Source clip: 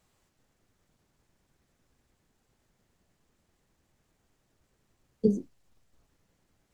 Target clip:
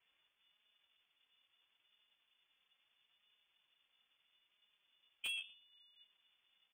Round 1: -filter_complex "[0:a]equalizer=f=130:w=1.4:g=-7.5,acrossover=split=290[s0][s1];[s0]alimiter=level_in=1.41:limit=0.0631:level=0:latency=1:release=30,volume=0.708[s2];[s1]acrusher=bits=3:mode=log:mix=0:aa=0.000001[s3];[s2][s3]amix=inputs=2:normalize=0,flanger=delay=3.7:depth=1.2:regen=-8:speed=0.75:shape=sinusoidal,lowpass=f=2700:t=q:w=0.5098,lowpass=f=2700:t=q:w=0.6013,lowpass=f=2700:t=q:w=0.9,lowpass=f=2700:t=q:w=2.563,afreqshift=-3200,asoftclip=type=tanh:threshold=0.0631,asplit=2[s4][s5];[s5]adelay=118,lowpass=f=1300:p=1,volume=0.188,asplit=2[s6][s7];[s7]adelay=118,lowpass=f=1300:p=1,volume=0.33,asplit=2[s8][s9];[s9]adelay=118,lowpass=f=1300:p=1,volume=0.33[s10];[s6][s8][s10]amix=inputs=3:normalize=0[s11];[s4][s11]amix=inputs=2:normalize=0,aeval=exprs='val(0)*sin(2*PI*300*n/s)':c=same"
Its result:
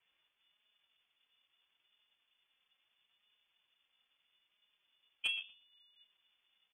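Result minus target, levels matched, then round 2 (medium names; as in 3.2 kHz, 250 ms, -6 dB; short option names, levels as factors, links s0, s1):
saturation: distortion -9 dB
-filter_complex "[0:a]equalizer=f=130:w=1.4:g=-7.5,acrossover=split=290[s0][s1];[s0]alimiter=level_in=1.41:limit=0.0631:level=0:latency=1:release=30,volume=0.708[s2];[s1]acrusher=bits=3:mode=log:mix=0:aa=0.000001[s3];[s2][s3]amix=inputs=2:normalize=0,flanger=delay=3.7:depth=1.2:regen=-8:speed=0.75:shape=sinusoidal,lowpass=f=2700:t=q:w=0.5098,lowpass=f=2700:t=q:w=0.6013,lowpass=f=2700:t=q:w=0.9,lowpass=f=2700:t=q:w=2.563,afreqshift=-3200,asoftclip=type=tanh:threshold=0.0178,asplit=2[s4][s5];[s5]adelay=118,lowpass=f=1300:p=1,volume=0.188,asplit=2[s6][s7];[s7]adelay=118,lowpass=f=1300:p=1,volume=0.33,asplit=2[s8][s9];[s9]adelay=118,lowpass=f=1300:p=1,volume=0.33[s10];[s6][s8][s10]amix=inputs=3:normalize=0[s11];[s4][s11]amix=inputs=2:normalize=0,aeval=exprs='val(0)*sin(2*PI*300*n/s)':c=same"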